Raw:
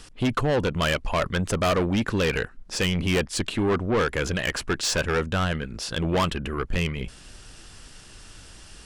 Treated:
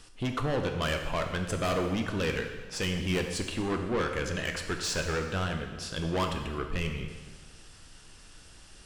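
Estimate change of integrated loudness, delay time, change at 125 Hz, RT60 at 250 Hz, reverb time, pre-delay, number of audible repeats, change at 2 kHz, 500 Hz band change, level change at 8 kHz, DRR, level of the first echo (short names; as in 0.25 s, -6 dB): -6.0 dB, none, -6.0 dB, 1.4 s, 1.4 s, 6 ms, none, -6.0 dB, -6.5 dB, -6.0 dB, 4.0 dB, none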